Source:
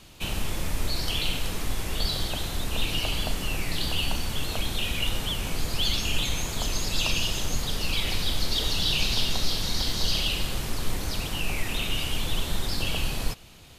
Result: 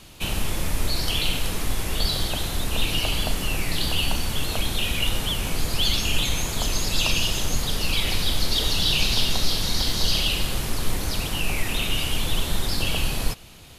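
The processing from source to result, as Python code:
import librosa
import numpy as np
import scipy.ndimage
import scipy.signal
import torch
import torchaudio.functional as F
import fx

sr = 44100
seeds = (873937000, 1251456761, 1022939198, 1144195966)

y = fx.peak_eq(x, sr, hz=11000.0, db=4.5, octaves=0.3)
y = y * 10.0 ** (3.5 / 20.0)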